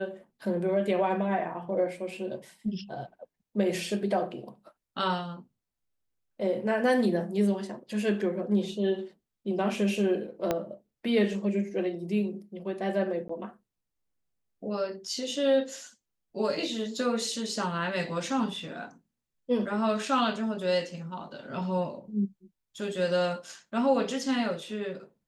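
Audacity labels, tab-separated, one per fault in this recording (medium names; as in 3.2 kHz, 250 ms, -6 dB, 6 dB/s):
10.510000	10.510000	pop -13 dBFS
13.280000	13.290000	dropout 14 ms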